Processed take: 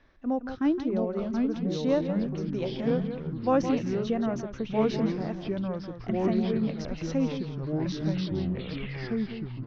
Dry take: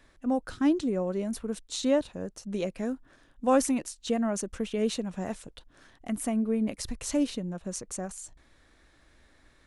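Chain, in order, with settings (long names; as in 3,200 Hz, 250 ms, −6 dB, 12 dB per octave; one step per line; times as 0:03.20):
turntable brake at the end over 2.69 s
elliptic low-pass filter 5,900 Hz, stop band 40 dB
high-shelf EQ 3,400 Hz −9.5 dB
single-tap delay 167 ms −9.5 dB
delay with pitch and tempo change per echo 611 ms, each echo −3 semitones, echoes 3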